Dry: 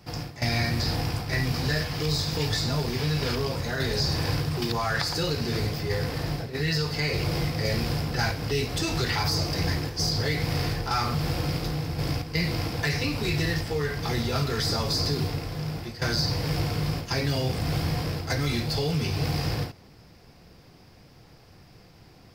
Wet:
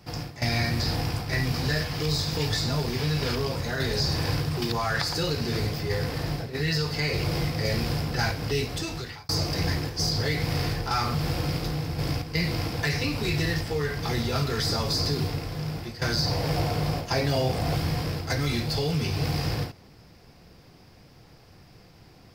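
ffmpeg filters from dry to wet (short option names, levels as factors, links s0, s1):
-filter_complex "[0:a]asettb=1/sr,asplit=3[s0][s1][s2];[s0]atrim=end=16.264[s3];[s1]atrim=start=16.26:end=17.75,asetpts=PTS-STARTPTS,afade=t=in:d=0.004:c=qsin,afade=t=out:st=1.486:d=0.004:c=qsin,equalizer=f=670:w=1.5:g=7.5[s4];[s2]atrim=start=17.746[s5];[s3][s4]acrossfade=d=0.004:c1=hsin:c2=qsin[s6];[s6][s5]acrossfade=d=0.004:c1=qsin:c2=hsin,asplit=2[s7][s8];[s7]atrim=end=9.29,asetpts=PTS-STARTPTS,afade=t=out:st=8.57:d=0.72[s9];[s8]atrim=start=9.29,asetpts=PTS-STARTPTS,afade=t=in:d=0.004:c=hsin[s10];[s9][s10]concat=n=2:v=0:a=1"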